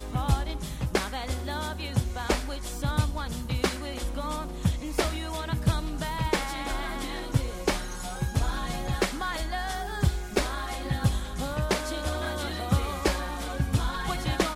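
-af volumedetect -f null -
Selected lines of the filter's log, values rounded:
mean_volume: -28.8 dB
max_volume: -11.0 dB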